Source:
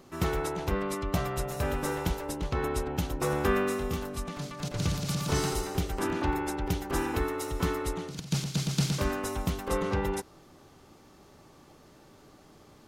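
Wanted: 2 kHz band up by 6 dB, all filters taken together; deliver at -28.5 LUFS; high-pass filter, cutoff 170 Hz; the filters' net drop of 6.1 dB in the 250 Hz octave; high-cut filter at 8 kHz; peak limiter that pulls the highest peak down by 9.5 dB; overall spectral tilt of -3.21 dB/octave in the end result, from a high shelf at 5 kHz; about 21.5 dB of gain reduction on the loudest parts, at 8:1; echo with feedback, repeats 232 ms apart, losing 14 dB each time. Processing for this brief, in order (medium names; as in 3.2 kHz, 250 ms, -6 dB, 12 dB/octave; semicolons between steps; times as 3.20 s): high-pass 170 Hz; low-pass 8 kHz; peaking EQ 250 Hz -7.5 dB; peaking EQ 2 kHz +7.5 dB; treble shelf 5 kHz +3 dB; compression 8:1, threshold -46 dBFS; peak limiter -38 dBFS; feedback delay 232 ms, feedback 20%, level -14 dB; trim +21 dB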